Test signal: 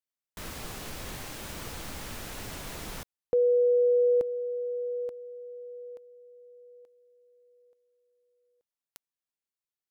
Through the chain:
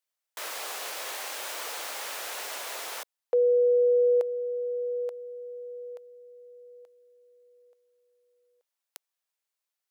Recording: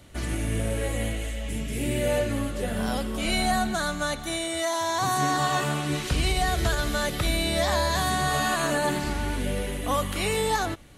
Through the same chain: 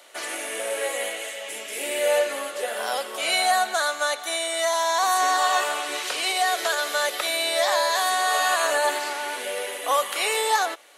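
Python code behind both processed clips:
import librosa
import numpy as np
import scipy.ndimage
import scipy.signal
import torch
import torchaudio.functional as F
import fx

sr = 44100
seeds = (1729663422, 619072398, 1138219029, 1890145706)

p1 = scipy.signal.sosfilt(scipy.signal.butter(4, 500.0, 'highpass', fs=sr, output='sos'), x)
p2 = fx.rider(p1, sr, range_db=3, speed_s=2.0)
y = p1 + (p2 * librosa.db_to_amplitude(-3.0))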